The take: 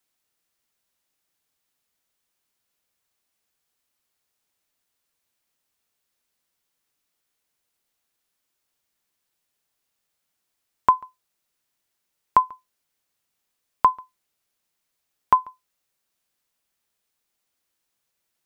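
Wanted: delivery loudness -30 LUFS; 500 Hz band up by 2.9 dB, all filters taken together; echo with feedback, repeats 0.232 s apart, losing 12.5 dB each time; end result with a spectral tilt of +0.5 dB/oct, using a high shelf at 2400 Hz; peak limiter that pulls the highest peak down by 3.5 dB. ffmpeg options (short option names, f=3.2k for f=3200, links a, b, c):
-af "equalizer=f=500:t=o:g=4,highshelf=f=2.4k:g=-5.5,alimiter=limit=-7.5dB:level=0:latency=1,aecho=1:1:232|464|696:0.237|0.0569|0.0137,volume=-3dB"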